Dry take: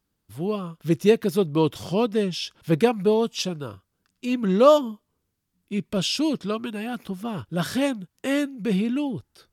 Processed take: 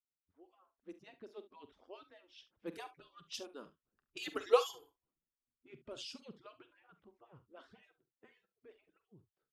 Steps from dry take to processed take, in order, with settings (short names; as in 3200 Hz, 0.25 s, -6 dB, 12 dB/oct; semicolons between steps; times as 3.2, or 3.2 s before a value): median-filter separation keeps percussive; Doppler pass-by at 4.35, 6 m/s, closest 1.3 m; low-pass opened by the level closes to 1300 Hz, open at -39 dBFS; early reflections 45 ms -13 dB, 70 ms -16.5 dB; gain -2.5 dB